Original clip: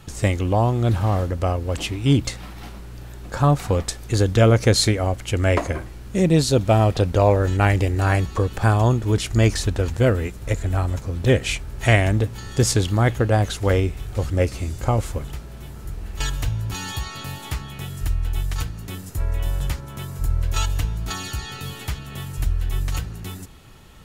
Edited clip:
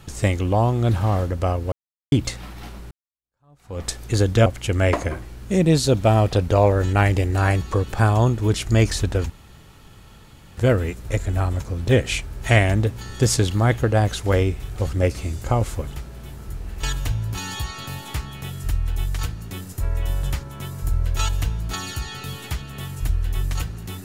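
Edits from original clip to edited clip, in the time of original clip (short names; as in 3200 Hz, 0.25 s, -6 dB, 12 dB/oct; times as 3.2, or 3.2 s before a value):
1.72–2.12 mute
2.91–3.85 fade in exponential
4.46–5.1 cut
9.94 insert room tone 1.27 s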